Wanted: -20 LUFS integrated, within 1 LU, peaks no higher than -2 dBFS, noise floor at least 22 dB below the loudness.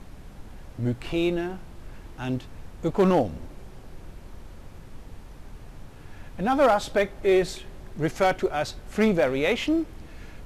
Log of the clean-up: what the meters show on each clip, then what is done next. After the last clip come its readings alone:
clipped 0.3%; flat tops at -13.5 dBFS; noise floor -45 dBFS; noise floor target -47 dBFS; loudness -25.0 LUFS; peak -13.5 dBFS; loudness target -20.0 LUFS
-> clip repair -13.5 dBFS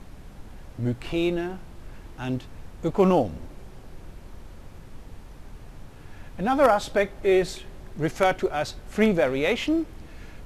clipped 0.0%; noise floor -45 dBFS; noise floor target -47 dBFS
-> noise print and reduce 6 dB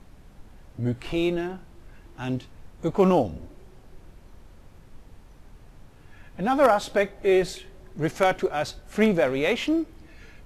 noise floor -51 dBFS; loudness -25.0 LUFS; peak -5.5 dBFS; loudness target -20.0 LUFS
-> gain +5 dB; limiter -2 dBFS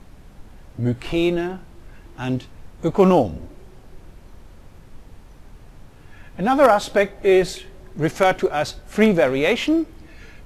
loudness -20.0 LUFS; peak -2.0 dBFS; noise floor -46 dBFS

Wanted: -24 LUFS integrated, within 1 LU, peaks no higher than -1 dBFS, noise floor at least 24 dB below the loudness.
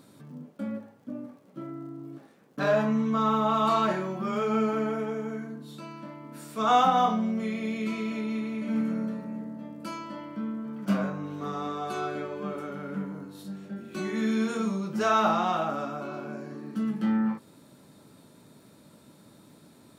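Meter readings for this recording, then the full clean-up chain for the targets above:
ticks 41/s; loudness -29.0 LUFS; peak -12.0 dBFS; loudness target -24.0 LUFS
-> de-click; gain +5 dB

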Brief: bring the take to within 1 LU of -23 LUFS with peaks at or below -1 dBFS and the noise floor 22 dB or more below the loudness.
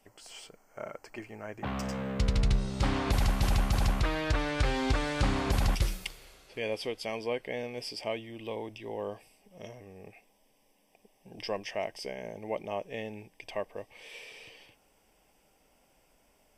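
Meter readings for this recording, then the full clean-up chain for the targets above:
loudness -33.0 LUFS; peak -13.0 dBFS; loudness target -23.0 LUFS
-> gain +10 dB

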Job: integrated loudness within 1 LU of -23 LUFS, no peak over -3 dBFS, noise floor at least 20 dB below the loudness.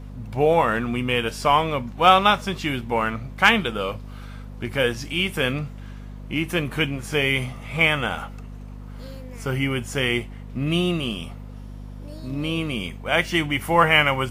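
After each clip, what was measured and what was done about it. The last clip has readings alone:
hum 50 Hz; harmonics up to 250 Hz; hum level -34 dBFS; loudness -22.0 LUFS; peak -2.5 dBFS; loudness target -23.0 LUFS
-> de-hum 50 Hz, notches 5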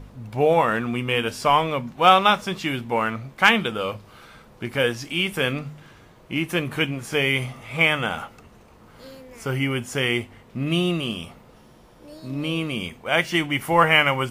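hum none; loudness -22.0 LUFS; peak -2.5 dBFS; loudness target -23.0 LUFS
-> gain -1 dB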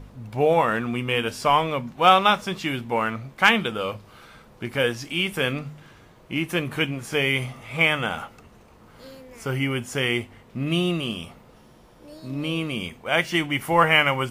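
loudness -23.0 LUFS; peak -3.5 dBFS; noise floor -52 dBFS

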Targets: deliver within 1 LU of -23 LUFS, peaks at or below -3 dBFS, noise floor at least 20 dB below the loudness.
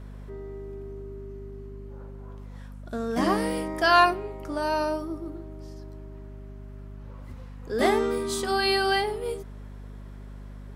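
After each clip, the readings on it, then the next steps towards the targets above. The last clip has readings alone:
hum 50 Hz; harmonics up to 250 Hz; hum level -38 dBFS; loudness -25.5 LUFS; peak -7.5 dBFS; loudness target -23.0 LUFS
-> de-hum 50 Hz, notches 5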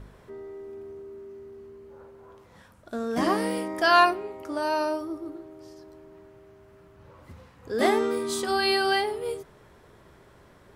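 hum none; loudness -25.5 LUFS; peak -8.0 dBFS; loudness target -23.0 LUFS
-> gain +2.5 dB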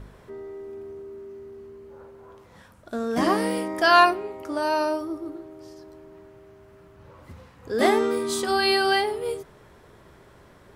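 loudness -23.0 LUFS; peak -5.5 dBFS; noise floor -53 dBFS

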